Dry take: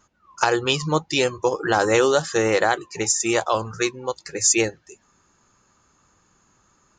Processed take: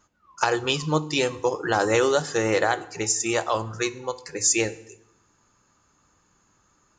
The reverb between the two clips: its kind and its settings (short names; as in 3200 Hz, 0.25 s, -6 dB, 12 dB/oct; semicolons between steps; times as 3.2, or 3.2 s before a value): FDN reverb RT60 0.75 s, low-frequency decay 1.45×, high-frequency decay 0.9×, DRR 13.5 dB; gain -3 dB